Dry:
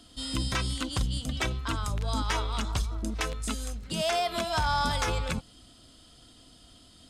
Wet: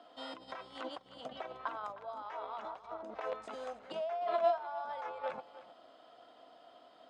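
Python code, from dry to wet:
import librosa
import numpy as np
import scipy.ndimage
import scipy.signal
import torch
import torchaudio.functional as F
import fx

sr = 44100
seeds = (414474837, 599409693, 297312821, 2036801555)

y = fx.over_compress(x, sr, threshold_db=-33.0, ratio=-0.5)
y = fx.ladder_bandpass(y, sr, hz=790.0, resonance_pct=45)
y = y + 10.0 ** (-16.0 / 20.0) * np.pad(y, (int(309 * sr / 1000.0), 0))[:len(y)]
y = y * librosa.db_to_amplitude(11.5)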